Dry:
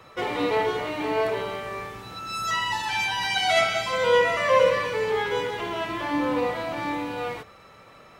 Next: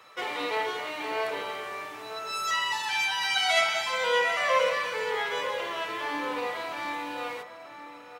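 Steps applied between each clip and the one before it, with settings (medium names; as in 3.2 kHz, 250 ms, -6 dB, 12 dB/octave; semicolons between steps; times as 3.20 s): high-pass 1.1 kHz 6 dB/octave; echo from a far wall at 160 m, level -9 dB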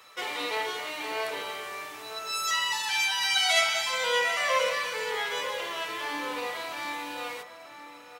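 treble shelf 3.3 kHz +10.5 dB; trim -3 dB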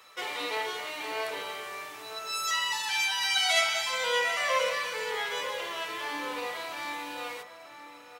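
hum notches 50/100/150/200/250/300 Hz; trim -1.5 dB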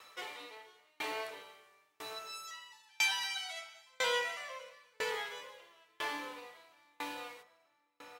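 sawtooth tremolo in dB decaying 1 Hz, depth 36 dB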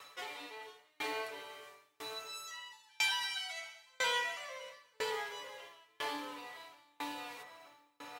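comb 7.1 ms, depth 57%; reverse; upward compressor, threshold -41 dBFS; reverse; trim -1.5 dB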